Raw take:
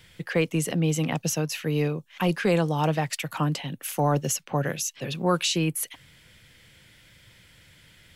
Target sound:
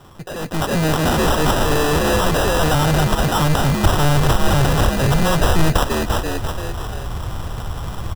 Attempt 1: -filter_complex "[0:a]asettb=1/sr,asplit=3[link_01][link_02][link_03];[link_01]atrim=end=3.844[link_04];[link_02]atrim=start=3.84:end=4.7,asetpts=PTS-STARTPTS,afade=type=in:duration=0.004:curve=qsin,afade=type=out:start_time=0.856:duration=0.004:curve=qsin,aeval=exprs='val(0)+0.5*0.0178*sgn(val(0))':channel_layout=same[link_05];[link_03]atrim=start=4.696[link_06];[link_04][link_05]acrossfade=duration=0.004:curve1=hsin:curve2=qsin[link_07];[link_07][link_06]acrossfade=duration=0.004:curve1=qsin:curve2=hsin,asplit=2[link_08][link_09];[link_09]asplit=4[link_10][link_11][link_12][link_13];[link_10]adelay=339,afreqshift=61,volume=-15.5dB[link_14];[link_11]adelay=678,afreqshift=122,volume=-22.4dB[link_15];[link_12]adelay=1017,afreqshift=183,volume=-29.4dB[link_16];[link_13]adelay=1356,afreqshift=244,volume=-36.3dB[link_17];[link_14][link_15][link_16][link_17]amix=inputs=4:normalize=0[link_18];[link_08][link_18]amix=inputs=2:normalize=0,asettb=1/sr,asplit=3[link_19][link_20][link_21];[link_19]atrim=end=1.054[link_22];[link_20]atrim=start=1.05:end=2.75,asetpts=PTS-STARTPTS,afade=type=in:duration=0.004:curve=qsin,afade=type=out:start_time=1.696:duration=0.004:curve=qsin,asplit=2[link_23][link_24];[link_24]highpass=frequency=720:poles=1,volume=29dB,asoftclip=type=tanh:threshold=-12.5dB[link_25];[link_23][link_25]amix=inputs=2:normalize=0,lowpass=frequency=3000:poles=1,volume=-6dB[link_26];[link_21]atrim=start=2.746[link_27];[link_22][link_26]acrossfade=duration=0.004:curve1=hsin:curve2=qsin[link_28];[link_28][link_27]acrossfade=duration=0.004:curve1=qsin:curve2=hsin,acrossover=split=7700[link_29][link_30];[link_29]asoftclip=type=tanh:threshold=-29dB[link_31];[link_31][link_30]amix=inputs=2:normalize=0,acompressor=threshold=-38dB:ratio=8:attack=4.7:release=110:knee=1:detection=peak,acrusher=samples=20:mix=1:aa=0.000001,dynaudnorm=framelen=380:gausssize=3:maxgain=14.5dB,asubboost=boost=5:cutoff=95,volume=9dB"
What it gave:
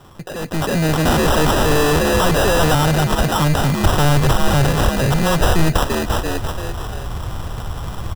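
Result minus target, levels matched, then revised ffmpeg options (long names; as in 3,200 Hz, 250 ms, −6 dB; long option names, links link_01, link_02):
soft clipping: distortion −4 dB
-filter_complex "[0:a]asettb=1/sr,asplit=3[link_01][link_02][link_03];[link_01]atrim=end=3.844[link_04];[link_02]atrim=start=3.84:end=4.7,asetpts=PTS-STARTPTS,afade=type=in:duration=0.004:curve=qsin,afade=type=out:start_time=0.856:duration=0.004:curve=qsin,aeval=exprs='val(0)+0.5*0.0178*sgn(val(0))':channel_layout=same[link_05];[link_03]atrim=start=4.696[link_06];[link_04][link_05]acrossfade=duration=0.004:curve1=hsin:curve2=qsin[link_07];[link_07][link_06]acrossfade=duration=0.004:curve1=qsin:curve2=hsin,asplit=2[link_08][link_09];[link_09]asplit=4[link_10][link_11][link_12][link_13];[link_10]adelay=339,afreqshift=61,volume=-15.5dB[link_14];[link_11]adelay=678,afreqshift=122,volume=-22.4dB[link_15];[link_12]adelay=1017,afreqshift=183,volume=-29.4dB[link_16];[link_13]adelay=1356,afreqshift=244,volume=-36.3dB[link_17];[link_14][link_15][link_16][link_17]amix=inputs=4:normalize=0[link_18];[link_08][link_18]amix=inputs=2:normalize=0,asettb=1/sr,asplit=3[link_19][link_20][link_21];[link_19]atrim=end=1.054[link_22];[link_20]atrim=start=1.05:end=2.75,asetpts=PTS-STARTPTS,afade=type=in:duration=0.004:curve=qsin,afade=type=out:start_time=1.696:duration=0.004:curve=qsin,asplit=2[link_23][link_24];[link_24]highpass=frequency=720:poles=1,volume=29dB,asoftclip=type=tanh:threshold=-12.5dB[link_25];[link_23][link_25]amix=inputs=2:normalize=0,lowpass=frequency=3000:poles=1,volume=-6dB[link_26];[link_21]atrim=start=2.746[link_27];[link_22][link_26]acrossfade=duration=0.004:curve1=hsin:curve2=qsin[link_28];[link_28][link_27]acrossfade=duration=0.004:curve1=qsin:curve2=hsin,acrossover=split=7700[link_29][link_30];[link_29]asoftclip=type=tanh:threshold=-38.5dB[link_31];[link_31][link_30]amix=inputs=2:normalize=0,acompressor=threshold=-38dB:ratio=8:attack=4.7:release=110:knee=1:detection=peak,acrusher=samples=20:mix=1:aa=0.000001,dynaudnorm=framelen=380:gausssize=3:maxgain=14.5dB,asubboost=boost=5:cutoff=95,volume=9dB"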